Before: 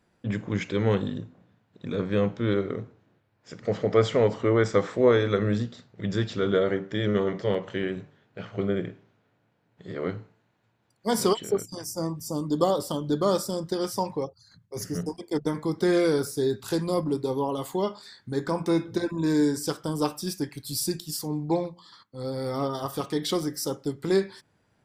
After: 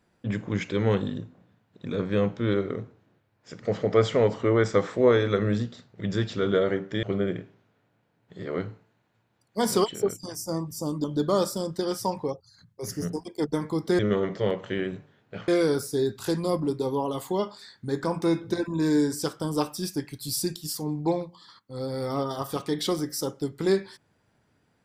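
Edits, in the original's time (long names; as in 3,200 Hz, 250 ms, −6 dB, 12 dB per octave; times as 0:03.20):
0:07.03–0:08.52: move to 0:15.92
0:12.53–0:12.97: remove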